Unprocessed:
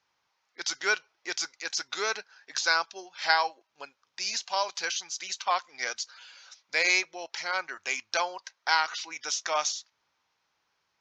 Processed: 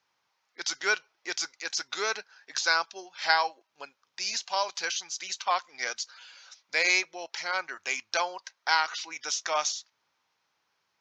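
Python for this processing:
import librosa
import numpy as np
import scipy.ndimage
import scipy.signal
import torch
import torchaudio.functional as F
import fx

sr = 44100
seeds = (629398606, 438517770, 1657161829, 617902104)

y = scipy.signal.sosfilt(scipy.signal.butter(2, 94.0, 'highpass', fs=sr, output='sos'), x)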